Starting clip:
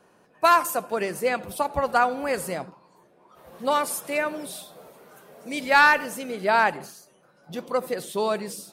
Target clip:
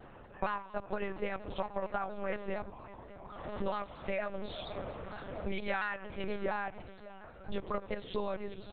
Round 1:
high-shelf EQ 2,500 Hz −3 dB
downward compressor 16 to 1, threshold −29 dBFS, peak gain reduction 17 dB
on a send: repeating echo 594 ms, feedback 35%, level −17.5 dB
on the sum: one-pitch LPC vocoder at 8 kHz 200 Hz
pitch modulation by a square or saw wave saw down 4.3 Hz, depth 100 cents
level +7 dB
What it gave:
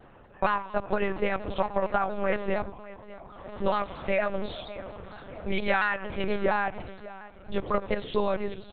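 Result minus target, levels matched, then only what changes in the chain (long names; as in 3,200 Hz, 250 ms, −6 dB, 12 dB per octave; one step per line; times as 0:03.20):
downward compressor: peak gain reduction −9.5 dB
change: downward compressor 16 to 1, threshold −39 dBFS, peak gain reduction 26.5 dB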